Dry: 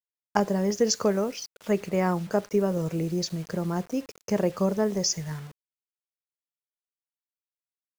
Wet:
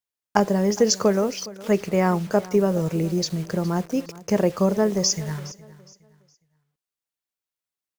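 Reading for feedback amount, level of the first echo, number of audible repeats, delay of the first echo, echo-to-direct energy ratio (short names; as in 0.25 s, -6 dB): 30%, -19.0 dB, 2, 0.414 s, -18.5 dB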